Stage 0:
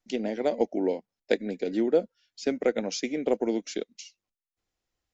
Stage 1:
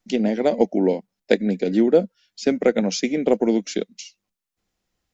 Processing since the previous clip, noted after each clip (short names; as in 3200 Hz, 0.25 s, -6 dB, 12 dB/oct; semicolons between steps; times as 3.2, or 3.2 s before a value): bell 190 Hz +9 dB 0.51 oct; gain +6.5 dB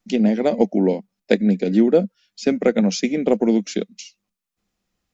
small resonant body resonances 200/1200/2500 Hz, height 6 dB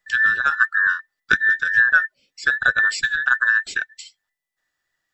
band inversion scrambler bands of 2000 Hz; gain -1 dB